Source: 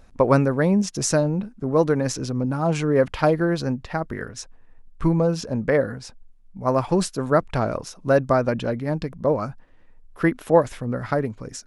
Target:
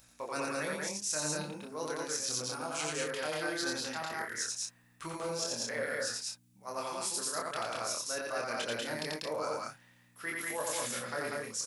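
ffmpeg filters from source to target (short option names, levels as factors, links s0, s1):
-filter_complex "[0:a]aderivative,areverse,acompressor=threshold=0.00631:ratio=16,areverse,aeval=exprs='val(0)+0.000178*(sin(2*PI*60*n/s)+sin(2*PI*2*60*n/s)/2+sin(2*PI*3*60*n/s)/3+sin(2*PI*4*60*n/s)/4+sin(2*PI*5*60*n/s)/5)':c=same,asplit=2[s0][s1];[s1]adelay=26,volume=0.75[s2];[s0][s2]amix=inputs=2:normalize=0,aecho=1:1:87.46|192.4|227.4:0.794|0.794|0.501,volume=2.51"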